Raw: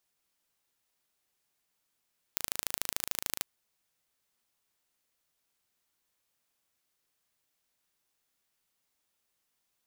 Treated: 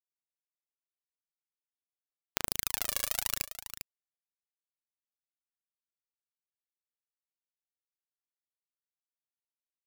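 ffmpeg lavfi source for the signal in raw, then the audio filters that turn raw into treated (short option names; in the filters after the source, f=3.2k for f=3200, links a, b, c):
-f lavfi -i "aevalsrc='0.75*eq(mod(n,1639),0)*(0.5+0.5*eq(mod(n,3278),0))':d=1.06:s=44100"
-filter_complex "[0:a]afftfilt=real='re*gte(hypot(re,im),0.000631)':imag='im*gte(hypot(re,im),0.000631)':win_size=1024:overlap=0.75,aphaser=in_gain=1:out_gain=1:delay=1.8:decay=0.68:speed=0.83:type=sinusoidal,asplit=2[a][b];[b]aecho=0:1:400:0.282[c];[a][c]amix=inputs=2:normalize=0"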